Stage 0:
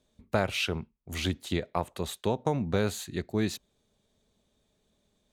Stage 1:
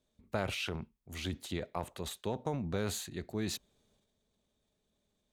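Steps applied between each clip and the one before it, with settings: transient shaper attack 0 dB, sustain +8 dB; gain -8 dB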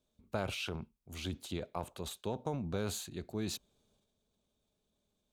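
bell 1900 Hz -9 dB 0.27 oct; gain -1.5 dB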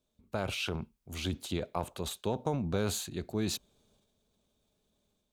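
AGC gain up to 5 dB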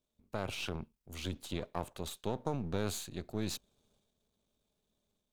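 half-wave gain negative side -7 dB; gain -2.5 dB

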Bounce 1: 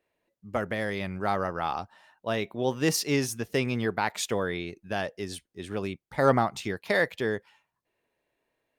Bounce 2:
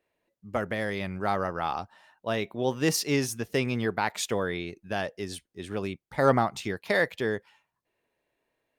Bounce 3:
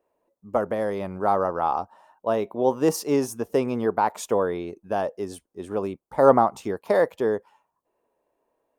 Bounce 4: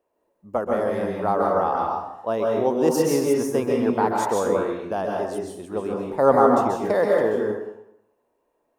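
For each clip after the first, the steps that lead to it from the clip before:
nothing audible
graphic EQ 125/250/500/1000/2000/4000 Hz -5/+3/+6/+9/-9/-8 dB
plate-style reverb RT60 0.8 s, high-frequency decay 0.75×, pre-delay 0.12 s, DRR -1.5 dB; gain -1.5 dB

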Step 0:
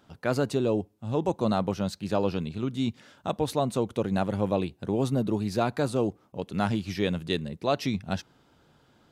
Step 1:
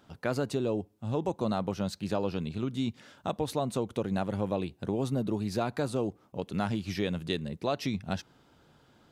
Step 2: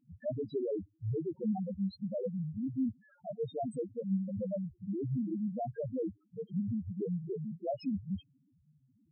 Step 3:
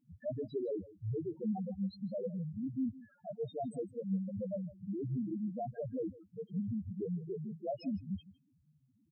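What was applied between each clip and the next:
compressor 2:1, threshold -29 dBFS, peak gain reduction 5.5 dB
loudest bins only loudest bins 1; gain +4.5 dB
echo 0.158 s -19 dB; gain -2.5 dB

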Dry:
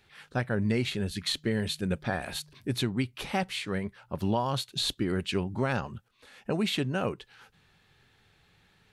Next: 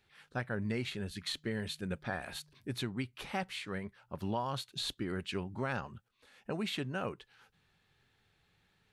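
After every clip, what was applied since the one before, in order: dynamic EQ 1400 Hz, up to +4 dB, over -46 dBFS, Q 0.84; gain -8.5 dB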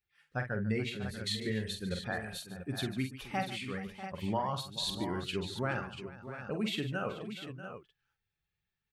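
per-bin expansion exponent 1.5; tapped delay 46/146/429/642/689 ms -7/-14.5/-17/-13/-10 dB; gain +3.5 dB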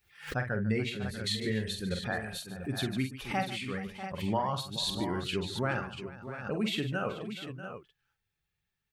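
backwards sustainer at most 130 dB/s; gain +2.5 dB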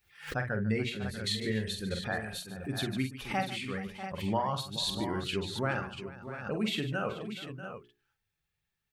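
notches 60/120/180/240/300/360/420 Hz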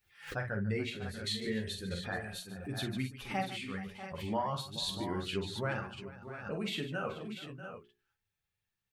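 flange 0.34 Hz, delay 8.7 ms, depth 4.8 ms, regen -28%

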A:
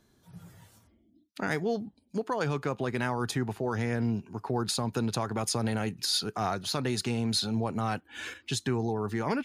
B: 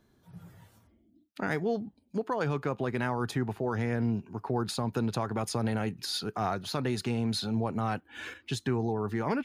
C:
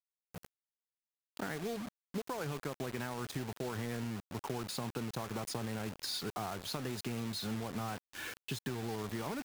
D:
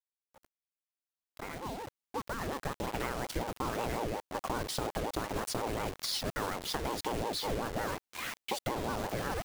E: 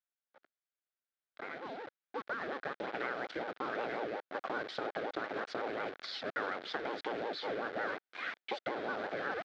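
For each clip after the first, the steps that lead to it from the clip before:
bell 7500 Hz -7.5 dB 2.1 oct
compressor 16:1, threshold -32 dBFS, peak gain reduction 9.5 dB; bit-crush 7-bit; gain -2.5 dB
opening faded in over 3.02 s; ring modulator with a swept carrier 450 Hz, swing 60%, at 5.5 Hz; gain +7 dB
speaker cabinet 350–3600 Hz, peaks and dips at 970 Hz -9 dB, 1500 Hz +6 dB, 2800 Hz -6 dB

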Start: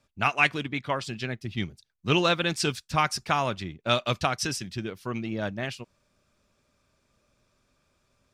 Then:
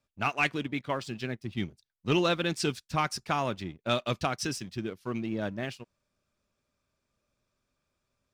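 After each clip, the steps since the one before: dynamic EQ 300 Hz, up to +5 dB, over -39 dBFS, Q 0.77; sample leveller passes 1; gain -8.5 dB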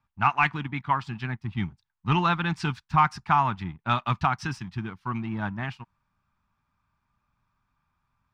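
EQ curve 170 Hz 0 dB, 550 Hz -21 dB, 870 Hz +6 dB, 11000 Hz -23 dB; gain +7 dB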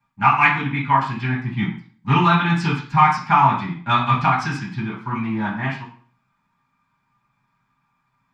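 reverb RT60 0.45 s, pre-delay 3 ms, DRR -8 dB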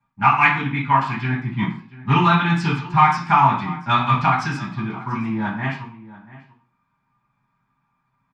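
echo 0.687 s -17.5 dB; mismatched tape noise reduction decoder only

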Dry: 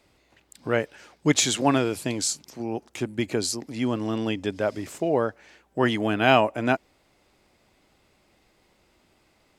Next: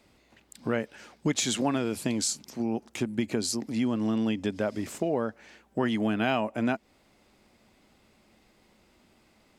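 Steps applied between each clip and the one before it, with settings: bell 220 Hz +8 dB 0.37 oct; compressor 3:1, threshold -25 dBFS, peak gain reduction 10.5 dB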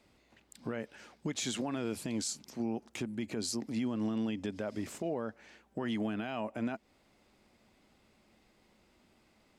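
high shelf 10000 Hz -3.5 dB; limiter -21.5 dBFS, peak gain reduction 9.5 dB; gain -4.5 dB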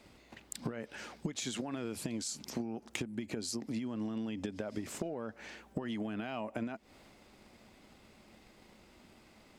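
transient shaper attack +7 dB, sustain +3 dB; compressor 10:1, threshold -41 dBFS, peak gain reduction 16 dB; gain +6.5 dB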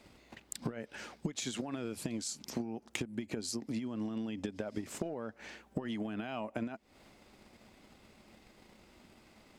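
transient shaper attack +1 dB, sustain -5 dB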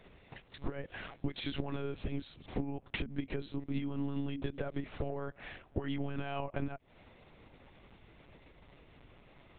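monotone LPC vocoder at 8 kHz 140 Hz; gain +2 dB

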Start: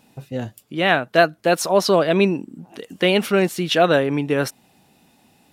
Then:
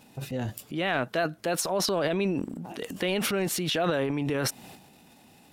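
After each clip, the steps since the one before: compressor 2.5:1, threshold -30 dBFS, peak gain reduction 13.5 dB; transient shaper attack -2 dB, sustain +11 dB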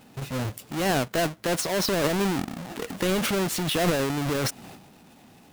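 half-waves squared off; gain -2 dB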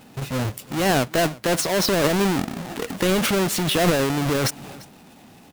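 echo 0.346 s -21.5 dB; gain +4.5 dB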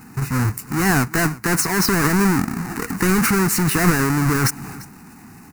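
fixed phaser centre 1400 Hz, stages 4; in parallel at -5 dB: soft clip -25.5 dBFS, distortion -10 dB; on the sum: gain +4.5 dB

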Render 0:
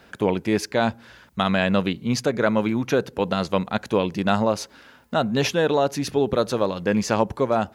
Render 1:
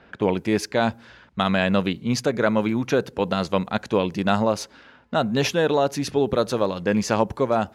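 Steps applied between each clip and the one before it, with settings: low-pass opened by the level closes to 2800 Hz, open at -20 dBFS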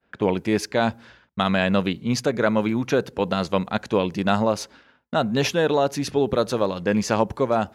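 expander -42 dBFS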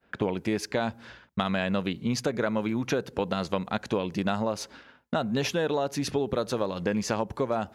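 compressor 4:1, threshold -28 dBFS, peak gain reduction 12 dB; gain +2.5 dB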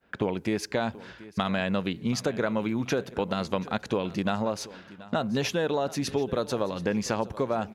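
feedback echo 0.731 s, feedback 30%, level -18.5 dB

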